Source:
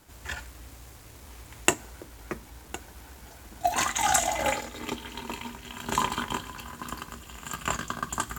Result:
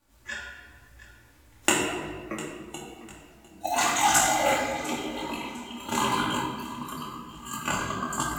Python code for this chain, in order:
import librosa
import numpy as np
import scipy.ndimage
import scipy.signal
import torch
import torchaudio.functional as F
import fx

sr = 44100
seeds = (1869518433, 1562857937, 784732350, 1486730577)

p1 = fx.noise_reduce_blind(x, sr, reduce_db=14)
p2 = p1 + fx.echo_feedback(p1, sr, ms=702, feedback_pct=33, wet_db=-17.5, dry=0)
p3 = fx.room_shoebox(p2, sr, seeds[0], volume_m3=1500.0, walls='mixed', distance_m=2.4)
p4 = fx.detune_double(p3, sr, cents=33)
y = p4 * 10.0 ** (3.0 / 20.0)